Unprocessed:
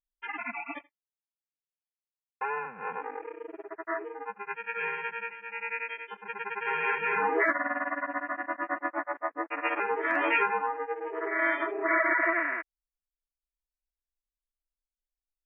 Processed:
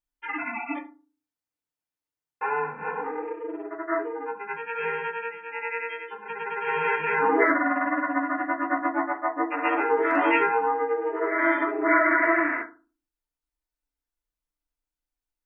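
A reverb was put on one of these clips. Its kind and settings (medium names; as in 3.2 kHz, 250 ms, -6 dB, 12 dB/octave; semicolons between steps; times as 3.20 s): FDN reverb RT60 0.33 s, low-frequency decay 1.5×, high-frequency decay 0.3×, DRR -2.5 dB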